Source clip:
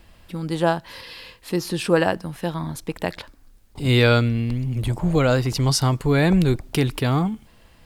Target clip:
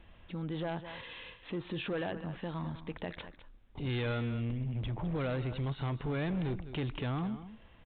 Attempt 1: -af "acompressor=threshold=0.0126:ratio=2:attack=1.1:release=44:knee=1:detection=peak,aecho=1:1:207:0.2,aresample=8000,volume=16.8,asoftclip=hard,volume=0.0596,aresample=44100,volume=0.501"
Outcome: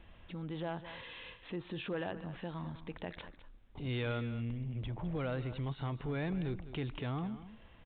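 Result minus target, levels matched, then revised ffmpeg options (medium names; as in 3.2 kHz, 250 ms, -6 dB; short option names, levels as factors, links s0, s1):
compression: peak gain reduction +4 dB
-af "acompressor=threshold=0.0316:ratio=2:attack=1.1:release=44:knee=1:detection=peak,aecho=1:1:207:0.2,aresample=8000,volume=16.8,asoftclip=hard,volume=0.0596,aresample=44100,volume=0.501"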